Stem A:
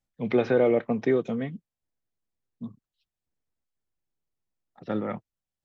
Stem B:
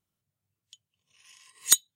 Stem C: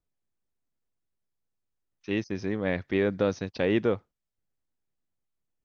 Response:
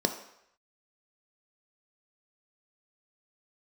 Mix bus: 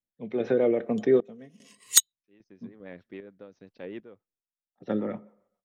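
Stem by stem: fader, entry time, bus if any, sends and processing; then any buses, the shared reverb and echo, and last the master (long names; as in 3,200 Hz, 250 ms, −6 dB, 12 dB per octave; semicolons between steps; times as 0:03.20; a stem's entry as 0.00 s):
−1.5 dB, 0.00 s, send −17 dB, no processing
+2.0 dB, 0.25 s, no send, no processing
−12.0 dB, 0.20 s, no send, high-pass filter 170 Hz 12 dB per octave; high-shelf EQ 3,500 Hz −9.5 dB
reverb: on, RT60 0.75 s, pre-delay 3 ms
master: sample-and-hold tremolo 2.5 Hz, depth 90%; rotating-speaker cabinet horn 7.5 Hz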